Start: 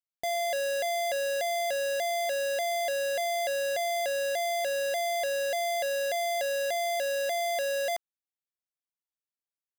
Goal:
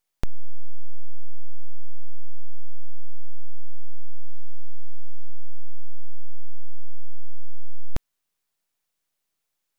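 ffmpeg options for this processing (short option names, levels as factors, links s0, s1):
-filter_complex "[0:a]aeval=exprs='abs(val(0))':c=same,asettb=1/sr,asplit=3[s0][s1][s2];[s0]atrim=end=4.274[s3];[s1]atrim=start=4.27:end=5.3,asetpts=PTS-STARTPTS,afade=t=in:d=0.004:c=qsin,afade=t=out:st=1.026:d=0.004:c=qsin,equalizer=f=2900:w=0.4:g=6.5[s4];[s2]atrim=start=5.296[s5];[s3][s4]acrossfade=d=0.004:c1=hsin:c2=qsin[s6];[s6][s5]acrossfade=d=0.004:c1=qsin:c2=hsin,volume=6.31"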